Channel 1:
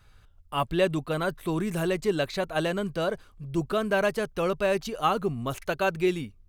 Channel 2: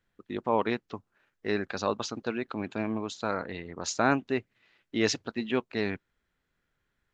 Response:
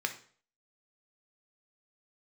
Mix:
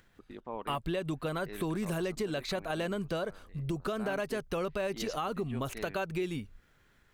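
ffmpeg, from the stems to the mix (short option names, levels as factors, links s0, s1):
-filter_complex "[0:a]agate=range=0.224:threshold=0.00282:ratio=16:detection=peak,alimiter=limit=0.0944:level=0:latency=1:release=144,adelay=150,volume=1.33[s0];[1:a]acompressor=mode=upward:threshold=0.0251:ratio=2.5,volume=0.794,afade=t=out:st=2.78:d=0.23:silence=0.298538,afade=t=in:st=3.9:d=0.21:silence=0.281838[s1];[s0][s1]amix=inputs=2:normalize=0,acompressor=threshold=0.0224:ratio=2.5"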